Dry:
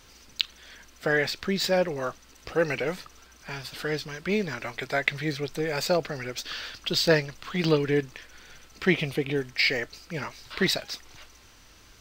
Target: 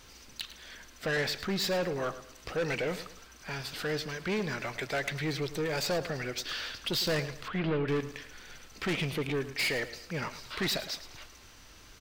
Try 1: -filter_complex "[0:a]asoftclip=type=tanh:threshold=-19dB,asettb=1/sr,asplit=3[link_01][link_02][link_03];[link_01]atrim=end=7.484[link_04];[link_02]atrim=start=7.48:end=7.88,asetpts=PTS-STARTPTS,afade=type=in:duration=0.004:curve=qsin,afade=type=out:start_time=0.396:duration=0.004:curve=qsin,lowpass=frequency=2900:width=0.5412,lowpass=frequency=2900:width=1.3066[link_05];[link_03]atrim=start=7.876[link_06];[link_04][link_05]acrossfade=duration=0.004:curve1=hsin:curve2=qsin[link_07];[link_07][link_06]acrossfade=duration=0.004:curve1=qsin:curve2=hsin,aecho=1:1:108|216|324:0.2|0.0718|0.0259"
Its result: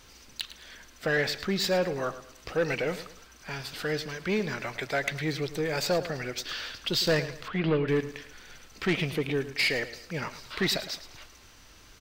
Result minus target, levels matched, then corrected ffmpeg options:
soft clipping: distortion −6 dB
-filter_complex "[0:a]asoftclip=type=tanh:threshold=-26.5dB,asettb=1/sr,asplit=3[link_01][link_02][link_03];[link_01]atrim=end=7.484[link_04];[link_02]atrim=start=7.48:end=7.88,asetpts=PTS-STARTPTS,afade=type=in:duration=0.004:curve=qsin,afade=type=out:start_time=0.396:duration=0.004:curve=qsin,lowpass=frequency=2900:width=0.5412,lowpass=frequency=2900:width=1.3066[link_05];[link_03]atrim=start=7.876[link_06];[link_04][link_05]acrossfade=duration=0.004:curve1=hsin:curve2=qsin[link_07];[link_07][link_06]acrossfade=duration=0.004:curve1=qsin:curve2=hsin,aecho=1:1:108|216|324:0.2|0.0718|0.0259"

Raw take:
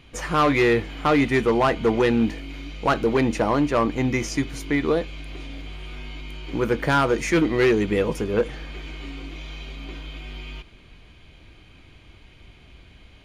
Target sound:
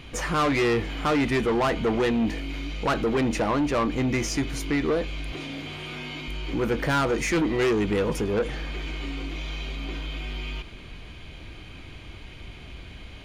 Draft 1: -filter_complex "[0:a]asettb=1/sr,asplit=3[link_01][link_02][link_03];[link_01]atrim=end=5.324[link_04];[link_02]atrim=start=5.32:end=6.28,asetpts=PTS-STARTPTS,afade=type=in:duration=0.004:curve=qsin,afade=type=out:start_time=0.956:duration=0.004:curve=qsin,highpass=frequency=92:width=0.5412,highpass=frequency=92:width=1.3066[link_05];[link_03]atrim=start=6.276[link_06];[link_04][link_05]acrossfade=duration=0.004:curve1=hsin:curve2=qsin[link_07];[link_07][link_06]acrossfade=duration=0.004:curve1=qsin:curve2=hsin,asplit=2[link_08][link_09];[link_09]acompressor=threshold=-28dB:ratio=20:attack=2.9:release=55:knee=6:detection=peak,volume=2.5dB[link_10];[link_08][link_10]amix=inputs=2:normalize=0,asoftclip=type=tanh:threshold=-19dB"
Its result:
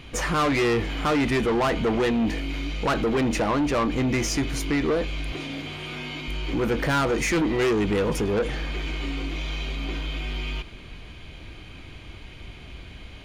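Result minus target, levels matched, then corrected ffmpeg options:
downward compressor: peak gain reduction −11 dB
-filter_complex "[0:a]asettb=1/sr,asplit=3[link_01][link_02][link_03];[link_01]atrim=end=5.324[link_04];[link_02]atrim=start=5.32:end=6.28,asetpts=PTS-STARTPTS,afade=type=in:duration=0.004:curve=qsin,afade=type=out:start_time=0.956:duration=0.004:curve=qsin,highpass=frequency=92:width=0.5412,highpass=frequency=92:width=1.3066[link_05];[link_03]atrim=start=6.276[link_06];[link_04][link_05]acrossfade=duration=0.004:curve1=hsin:curve2=qsin[link_07];[link_07][link_06]acrossfade=duration=0.004:curve1=qsin:curve2=hsin,asplit=2[link_08][link_09];[link_09]acompressor=threshold=-39.5dB:ratio=20:attack=2.9:release=55:knee=6:detection=peak,volume=2.5dB[link_10];[link_08][link_10]amix=inputs=2:normalize=0,asoftclip=type=tanh:threshold=-19dB"

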